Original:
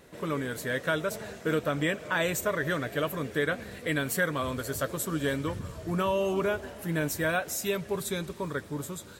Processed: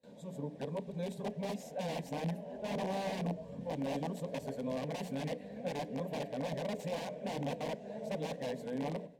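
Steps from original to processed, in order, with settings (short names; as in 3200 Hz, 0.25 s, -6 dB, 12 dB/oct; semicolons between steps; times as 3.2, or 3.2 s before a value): whole clip reversed; gate with hold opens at -39 dBFS; notches 60/120/180/240/300/360/420 Hz; wrapped overs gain 24 dB; band-pass 350 Hz, Q 0.56; fixed phaser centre 350 Hz, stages 6; on a send: reverb, pre-delay 3 ms, DRR 21 dB; on the sum: gain +1 dB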